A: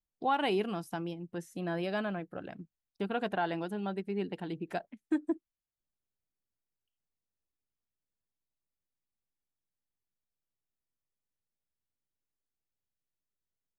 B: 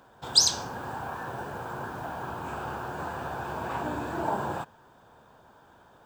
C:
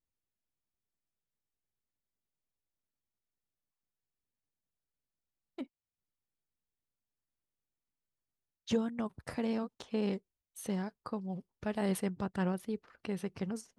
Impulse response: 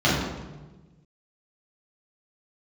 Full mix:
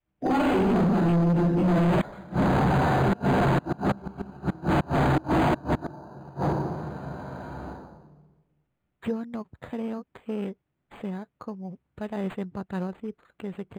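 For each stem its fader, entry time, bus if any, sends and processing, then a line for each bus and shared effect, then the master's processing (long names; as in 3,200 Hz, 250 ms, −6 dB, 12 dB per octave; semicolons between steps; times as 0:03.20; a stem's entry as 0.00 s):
+2.0 dB, 0.00 s, send −5.5 dB, brickwall limiter −29 dBFS, peak gain reduction 10 dB
+0.5 dB, 1.65 s, send −4 dB, gate on every frequency bin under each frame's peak −30 dB strong; mains-hum notches 60/120/180/240/300 Hz
+2.0 dB, 0.35 s, no send, no processing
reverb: on, RT60 1.2 s, pre-delay 3 ms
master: gate with flip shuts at −3 dBFS, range −32 dB; gain into a clipping stage and back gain 19.5 dB; linearly interpolated sample-rate reduction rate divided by 8×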